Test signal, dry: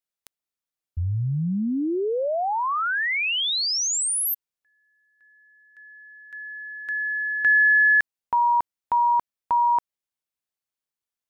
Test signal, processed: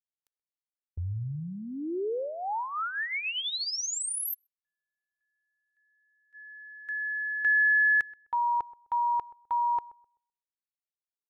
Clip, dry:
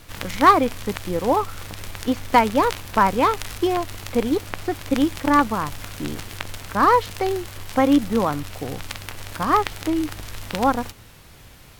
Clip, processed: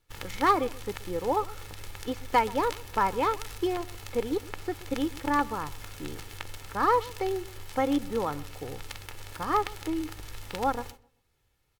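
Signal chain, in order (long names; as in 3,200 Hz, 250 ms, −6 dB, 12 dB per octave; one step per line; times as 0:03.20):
noise gate −37 dBFS, range −19 dB
comb filter 2.3 ms, depth 45%
feedback echo with a low-pass in the loop 128 ms, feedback 27%, low-pass 1,200 Hz, level −19 dB
level −9 dB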